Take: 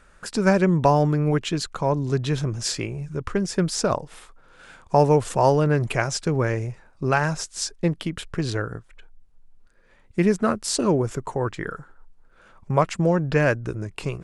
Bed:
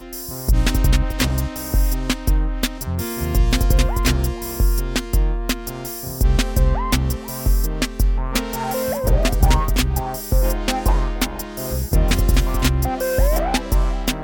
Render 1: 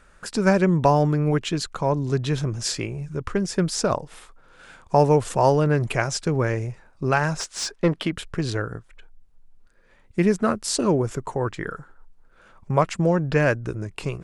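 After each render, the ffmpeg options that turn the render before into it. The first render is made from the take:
-filter_complex "[0:a]asettb=1/sr,asplit=3[s0][s1][s2];[s0]atrim=end=7.404[s3];[s1]atrim=start=7.4:end=8.12,asetpts=PTS-STARTPTS,afade=t=in:d=0.004:c=qsin,afade=t=out:st=0.716:d=0.004:c=qsin,asplit=2[s4][s5];[s5]highpass=f=720:p=1,volume=7.94,asoftclip=type=tanh:threshold=0.376[s6];[s4][s6]amix=inputs=2:normalize=0,lowpass=f=1900:p=1,volume=0.501[s7];[s2]atrim=start=8.116[s8];[s3][s7]acrossfade=d=0.004:c1=hsin:c2=qsin[s9];[s9][s8]acrossfade=d=0.004:c1=qsin:c2=hsin"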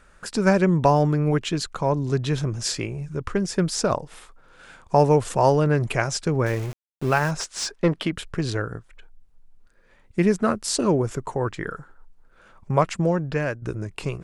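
-filter_complex "[0:a]asettb=1/sr,asplit=3[s0][s1][s2];[s0]atrim=end=6.464[s3];[s1]atrim=start=6.46:end=7.31,asetpts=PTS-STARTPTS,afade=t=in:d=0.004:c=qsin,afade=t=out:st=0.846:d=0.004:c=qsin,aeval=exprs='val(0)*gte(abs(val(0)),0.0224)':c=same[s4];[s2]atrim=start=7.306[s5];[s3][s4]acrossfade=d=0.004:c1=hsin:c2=qsin[s6];[s6][s5]acrossfade=d=0.004:c1=qsin:c2=hsin,asplit=2[s7][s8];[s7]atrim=end=13.62,asetpts=PTS-STARTPTS,afade=t=out:st=12.92:d=0.7:silence=0.334965[s9];[s8]atrim=start=13.62,asetpts=PTS-STARTPTS,afade=t=in:d=0.004:c=hsin:silence=0.334965[s10];[s9][s10]concat=n=2:v=0:a=1"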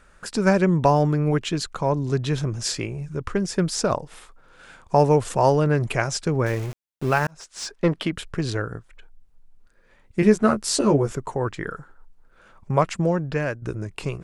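-filter_complex "[0:a]asettb=1/sr,asplit=3[s0][s1][s2];[s0]atrim=end=10.214[s3];[s1]atrim=start=10.21:end=11.12,asetpts=PTS-STARTPTS,afade=t=in:d=0.004:c=qsin,afade=t=out:st=0.906:d=0.004:c=qsin,asplit=2[s4][s5];[s5]adelay=14,volume=0.708[s6];[s4][s6]amix=inputs=2:normalize=0,atrim=end_sample=40131[s7];[s2]atrim=start=11.116[s8];[s3][s7]acrossfade=d=0.004:c1=hsin:c2=qsin[s9];[s9][s8]acrossfade=d=0.004:c1=qsin:c2=hsin,asplit=2[s10][s11];[s10]atrim=end=7.27,asetpts=PTS-STARTPTS,afade=t=out:st=7.266:d=0.004:c=hsin[s12];[s11]atrim=start=7.27,asetpts=PTS-STARTPTS,afade=t=in:d=0.59[s13];[s12][s13]concat=n=2:v=0:a=1"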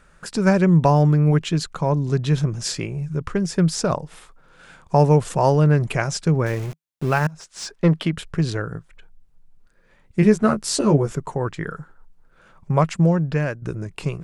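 -af "equalizer=f=160:t=o:w=0.37:g=8.5"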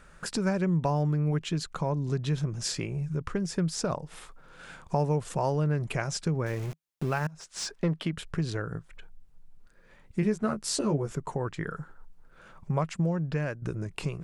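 -af "acompressor=threshold=0.0224:ratio=2"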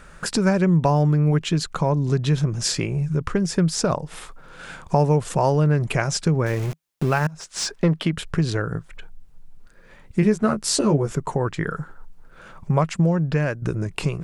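-af "volume=2.66"

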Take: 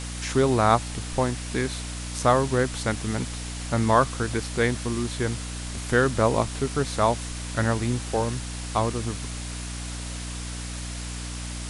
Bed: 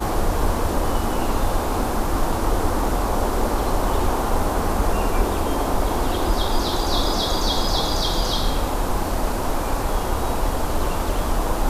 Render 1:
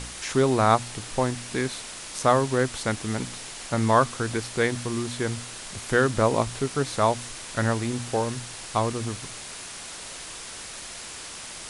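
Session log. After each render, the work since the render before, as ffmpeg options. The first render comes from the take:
-af "bandreject=f=60:t=h:w=4,bandreject=f=120:t=h:w=4,bandreject=f=180:t=h:w=4,bandreject=f=240:t=h:w=4,bandreject=f=300:t=h:w=4"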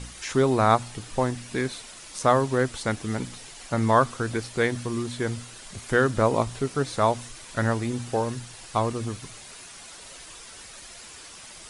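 -af "afftdn=nr=8:nf=-39"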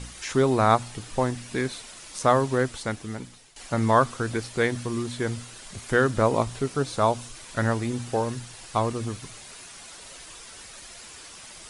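-filter_complex "[0:a]asettb=1/sr,asplit=3[s0][s1][s2];[s0]atrim=end=6.764[s3];[s1]atrim=start=6.76:end=7.34,asetpts=PTS-STARTPTS,afade=t=in:d=0.004:c=qsin,afade=t=out:st=0.576:d=0.004:c=qsin,equalizer=f=1900:t=o:w=0.3:g=-7[s4];[s2]atrim=start=7.336[s5];[s3][s4]acrossfade=d=0.004:c1=hsin:c2=qsin[s6];[s6][s5]acrossfade=d=0.004:c1=qsin:c2=hsin,asplit=2[s7][s8];[s7]atrim=end=3.56,asetpts=PTS-STARTPTS,afade=t=out:st=2.54:d=1.02:silence=0.188365[s9];[s8]atrim=start=3.56,asetpts=PTS-STARTPTS,afade=t=in:d=0.004:c=hsin:silence=0.188365[s10];[s9][s10]concat=n=2:v=0:a=1"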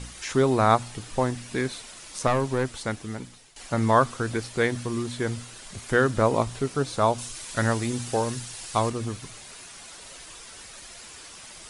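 -filter_complex "[0:a]asettb=1/sr,asplit=3[s0][s1][s2];[s0]atrim=end=2.274[s3];[s1]atrim=start=2.27:end=2.77,asetpts=PTS-STARTPTS,afade=t=in:d=0.004:c=qsin,afade=t=out:st=0.496:d=0.004:c=qsin,aeval=exprs='(tanh(6.31*val(0)+0.35)-tanh(0.35))/6.31':c=same[s4];[s2]atrim=start=2.766[s5];[s3][s4]acrossfade=d=0.004:c1=hsin:c2=qsin[s6];[s6][s5]acrossfade=d=0.004:c1=qsin:c2=hsin,asettb=1/sr,asplit=3[s7][s8][s9];[s7]atrim=end=7.184[s10];[s8]atrim=start=7.18:end=8.9,asetpts=PTS-STARTPTS,afade=t=in:d=0.004:c=qsin,afade=t=out:st=1.716:d=0.004:c=qsin,highshelf=f=3200:g=7.5[s11];[s9]atrim=start=8.896[s12];[s10][s11]acrossfade=d=0.004:c1=hsin:c2=qsin[s13];[s13][s12]acrossfade=d=0.004:c1=qsin:c2=hsin"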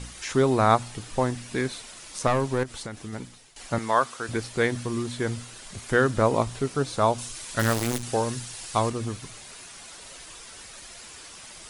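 -filter_complex "[0:a]asettb=1/sr,asplit=3[s0][s1][s2];[s0]atrim=end=2.634[s3];[s1]atrim=start=2.63:end=3.13,asetpts=PTS-STARTPTS,afade=t=in:d=0.004:c=qsin,afade=t=out:st=0.496:d=0.004:c=qsin,acompressor=threshold=0.0282:ratio=6:attack=3.2:release=140:knee=1:detection=peak[s4];[s2]atrim=start=3.126[s5];[s3][s4]acrossfade=d=0.004:c1=hsin:c2=qsin[s6];[s6][s5]acrossfade=d=0.004:c1=qsin:c2=hsin,asettb=1/sr,asplit=3[s7][s8][s9];[s7]atrim=end=3.784[s10];[s8]atrim=start=3.78:end=4.29,asetpts=PTS-STARTPTS,afade=t=in:d=0.004:c=qsin,afade=t=out:st=0.506:d=0.004:c=qsin,highpass=f=710:p=1[s11];[s9]atrim=start=4.286[s12];[s10][s11]acrossfade=d=0.004:c1=hsin:c2=qsin[s13];[s13][s12]acrossfade=d=0.004:c1=qsin:c2=hsin,asettb=1/sr,asplit=3[s14][s15][s16];[s14]atrim=end=7.594[s17];[s15]atrim=start=7.59:end=8.03,asetpts=PTS-STARTPTS,afade=t=in:d=0.004:c=qsin,afade=t=out:st=0.436:d=0.004:c=qsin,acrusher=bits=5:dc=4:mix=0:aa=0.000001[s18];[s16]atrim=start=8.026[s19];[s17][s18]acrossfade=d=0.004:c1=hsin:c2=qsin[s20];[s20][s19]acrossfade=d=0.004:c1=qsin:c2=hsin"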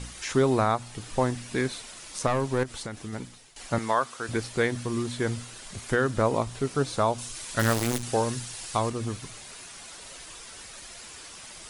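-af "alimiter=limit=0.251:level=0:latency=1:release=355"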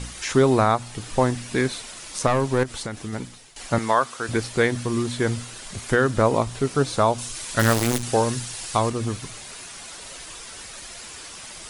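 -af "volume=1.78"

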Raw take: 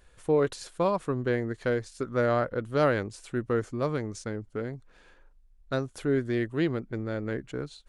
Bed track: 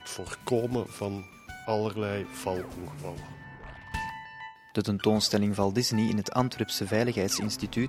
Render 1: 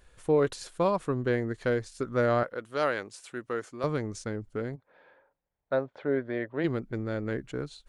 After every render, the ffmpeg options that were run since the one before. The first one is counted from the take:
-filter_complex "[0:a]asettb=1/sr,asplit=3[s0][s1][s2];[s0]atrim=end=2.434[s3];[s1]atrim=start=2.43:end=3.84,asetpts=PTS-STARTPTS,afade=t=in:d=0.004:c=qsin,afade=t=out:st=1.406:d=0.004:c=qsin,highpass=f=710:p=1[s4];[s2]atrim=start=3.836[s5];[s3][s4]acrossfade=d=0.004:c1=hsin:c2=qsin[s6];[s6][s5]acrossfade=d=0.004:c1=qsin:c2=hsin,asplit=3[s7][s8][s9];[s7]afade=t=out:st=4.75:d=0.02[s10];[s8]highpass=200,equalizer=f=210:t=q:w=4:g=-7,equalizer=f=340:t=q:w=4:g=-6,equalizer=f=570:t=q:w=4:g=8,equalizer=f=880:t=q:w=4:g=5,equalizer=f=1200:t=q:w=4:g=-3,equalizer=f=2800:t=q:w=4:g=-9,lowpass=f=3100:w=0.5412,lowpass=f=3100:w=1.3066,afade=t=in:st=4.75:d=0.02,afade=t=out:st=6.63:d=0.02[s11];[s9]afade=t=in:st=6.63:d=0.02[s12];[s10][s11][s12]amix=inputs=3:normalize=0"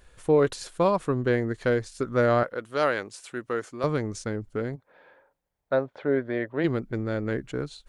-af "volume=1.5"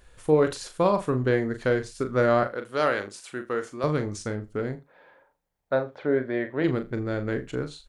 -filter_complex "[0:a]asplit=2[s0][s1];[s1]adelay=39,volume=0.376[s2];[s0][s2]amix=inputs=2:normalize=0,aecho=1:1:80:0.0891"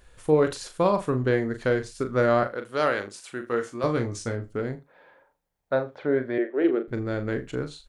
-filter_complex "[0:a]asettb=1/sr,asplit=3[s0][s1][s2];[s0]atrim=end=3.414[s3];[s1]atrim=start=3.41:end=4.52,asetpts=PTS-STARTPTS,afade=t=in:d=0.004:c=qsin,afade=t=out:st=1.106:d=0.004:c=qsin,asplit=2[s4][s5];[s5]adelay=17,volume=0.501[s6];[s4][s6]amix=inputs=2:normalize=0,atrim=end_sample=48951[s7];[s2]atrim=start=4.516[s8];[s3][s7]acrossfade=d=0.004:c1=hsin:c2=qsin[s9];[s9][s8]acrossfade=d=0.004:c1=qsin:c2=hsin,asettb=1/sr,asplit=3[s10][s11][s12];[s10]atrim=end=6.384[s13];[s11]atrim=start=6.38:end=6.88,asetpts=PTS-STARTPTS,afade=t=in:d=0.004:c=qsin,afade=t=out:st=0.496:d=0.004:c=qsin,highpass=f=280:w=0.5412,highpass=f=280:w=1.3066,equalizer=f=380:t=q:w=4:g=9,equalizer=f=1000:t=q:w=4:g=-9,equalizer=f=2000:t=q:w=4:g=-5,lowpass=f=2900:w=0.5412,lowpass=f=2900:w=1.3066[s14];[s12]atrim=start=6.876[s15];[s13][s14]acrossfade=d=0.004:c1=hsin:c2=qsin[s16];[s16][s15]acrossfade=d=0.004:c1=qsin:c2=hsin"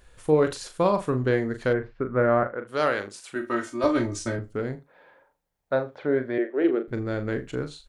-filter_complex "[0:a]asplit=3[s0][s1][s2];[s0]afade=t=out:st=1.72:d=0.02[s3];[s1]lowpass=f=2100:w=0.5412,lowpass=f=2100:w=1.3066,afade=t=in:st=1.72:d=0.02,afade=t=out:st=2.67:d=0.02[s4];[s2]afade=t=in:st=2.67:d=0.02[s5];[s3][s4][s5]amix=inputs=3:normalize=0,asettb=1/sr,asplit=3[s6][s7][s8];[s6]atrim=end=3.354[s9];[s7]atrim=start=3.35:end=4.39,asetpts=PTS-STARTPTS,afade=t=in:d=0.004:c=qsin,afade=t=out:st=1.036:d=0.004:c=qsin,aecho=1:1:3.2:0.96,atrim=end_sample=45864[s10];[s8]atrim=start=4.386[s11];[s9][s10]acrossfade=d=0.004:c1=hsin:c2=qsin[s12];[s12][s11]acrossfade=d=0.004:c1=qsin:c2=hsin"

